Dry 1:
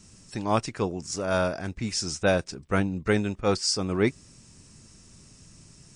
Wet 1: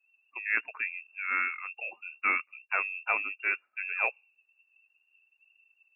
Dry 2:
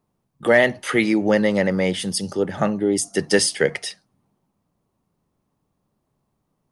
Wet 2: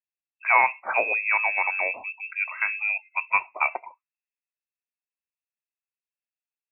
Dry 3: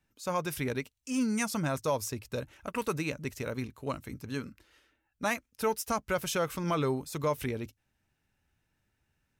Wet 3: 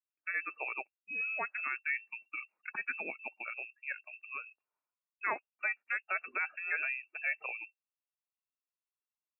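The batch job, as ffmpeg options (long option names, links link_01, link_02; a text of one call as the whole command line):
ffmpeg -i in.wav -filter_complex "[0:a]lowpass=frequency=2400:width_type=q:width=0.5098,lowpass=frequency=2400:width_type=q:width=0.6013,lowpass=frequency=2400:width_type=q:width=0.9,lowpass=frequency=2400:width_type=q:width=2.563,afreqshift=-2800,afftdn=noise_reduction=26:noise_floor=-40,acrossover=split=220 2000:gain=0.0891 1 0.2[link_01][link_02][link_03];[link_01][link_02][link_03]amix=inputs=3:normalize=0" out.wav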